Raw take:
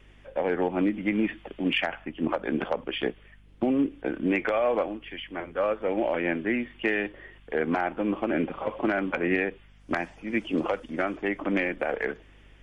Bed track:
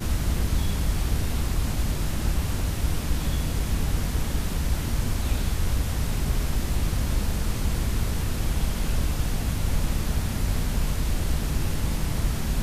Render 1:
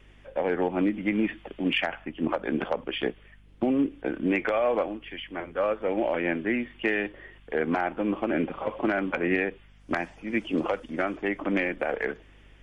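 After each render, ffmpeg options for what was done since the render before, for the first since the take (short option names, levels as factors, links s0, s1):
-af anull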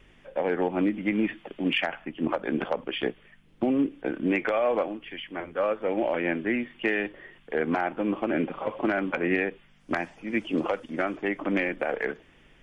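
-af "bandreject=f=50:t=h:w=4,bandreject=f=100:t=h:w=4"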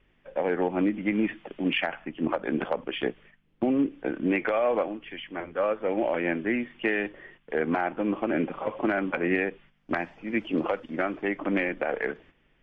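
-af "agate=range=0.355:threshold=0.00282:ratio=16:detection=peak,lowpass=3500"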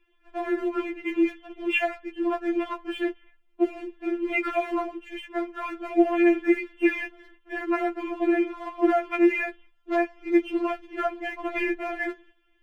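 -filter_complex "[0:a]asplit=2[s0][s1];[s1]aeval=exprs='sgn(val(0))*max(abs(val(0))-0.0075,0)':c=same,volume=0.668[s2];[s0][s2]amix=inputs=2:normalize=0,afftfilt=real='re*4*eq(mod(b,16),0)':imag='im*4*eq(mod(b,16),0)':win_size=2048:overlap=0.75"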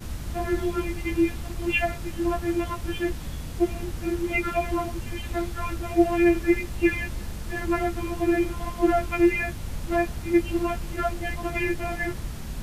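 -filter_complex "[1:a]volume=0.376[s0];[0:a][s0]amix=inputs=2:normalize=0"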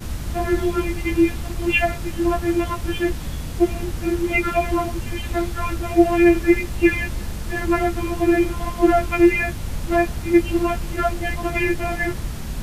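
-af "volume=1.88,alimiter=limit=0.708:level=0:latency=1"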